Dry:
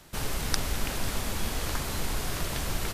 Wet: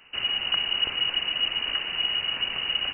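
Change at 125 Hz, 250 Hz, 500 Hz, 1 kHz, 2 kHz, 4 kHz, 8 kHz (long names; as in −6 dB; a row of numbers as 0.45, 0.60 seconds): −16.5 dB, −11.0 dB, −6.5 dB, −2.5 dB, +6.0 dB, +15.5 dB, below −40 dB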